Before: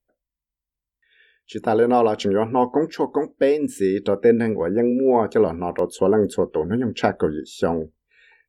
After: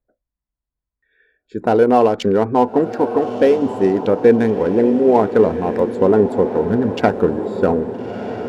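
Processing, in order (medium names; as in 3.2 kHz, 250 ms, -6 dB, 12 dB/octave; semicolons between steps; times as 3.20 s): local Wiener filter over 15 samples; on a send: echo that smears into a reverb 1311 ms, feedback 51%, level -10 dB; on the sum: trim +4.5 dB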